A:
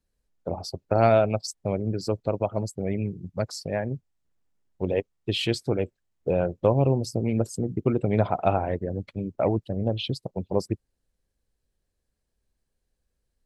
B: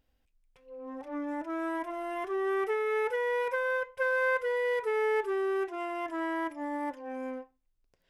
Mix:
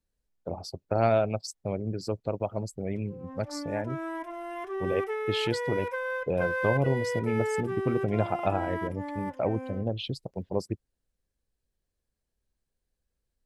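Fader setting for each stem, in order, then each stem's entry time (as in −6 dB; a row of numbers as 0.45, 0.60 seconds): −4.5, −2.0 decibels; 0.00, 2.40 seconds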